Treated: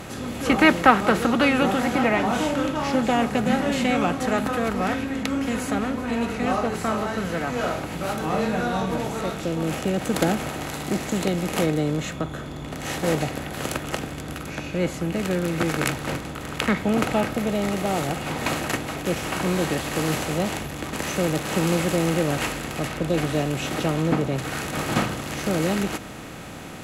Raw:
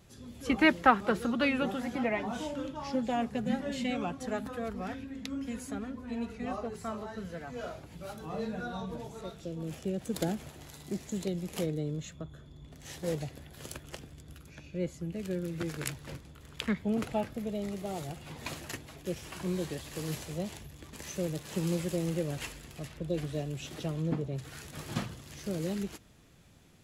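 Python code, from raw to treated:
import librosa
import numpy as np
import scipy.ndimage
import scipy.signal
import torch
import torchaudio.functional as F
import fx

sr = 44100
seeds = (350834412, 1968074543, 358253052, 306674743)

y = fx.bin_compress(x, sr, power=0.6)
y = y * librosa.db_to_amplitude(6.0)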